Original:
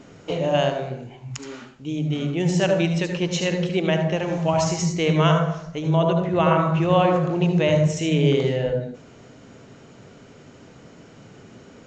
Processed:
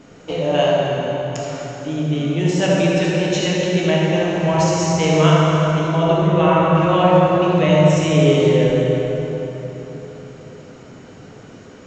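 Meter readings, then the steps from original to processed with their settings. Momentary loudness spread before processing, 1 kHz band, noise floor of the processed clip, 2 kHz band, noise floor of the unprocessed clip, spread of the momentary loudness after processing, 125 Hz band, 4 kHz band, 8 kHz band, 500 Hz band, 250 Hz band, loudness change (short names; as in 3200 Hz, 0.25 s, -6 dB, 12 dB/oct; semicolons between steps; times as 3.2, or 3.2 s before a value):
13 LU, +5.5 dB, -41 dBFS, +5.0 dB, -48 dBFS, 14 LU, +4.5 dB, +5.0 dB, +4.5 dB, +6.0 dB, +5.0 dB, +4.5 dB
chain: plate-style reverb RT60 4.2 s, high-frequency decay 0.65×, DRR -4 dB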